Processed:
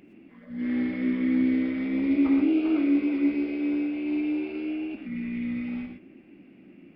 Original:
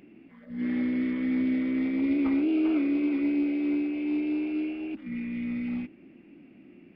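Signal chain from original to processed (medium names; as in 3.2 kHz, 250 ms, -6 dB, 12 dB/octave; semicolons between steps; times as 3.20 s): gated-style reverb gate 140 ms rising, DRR 3.5 dB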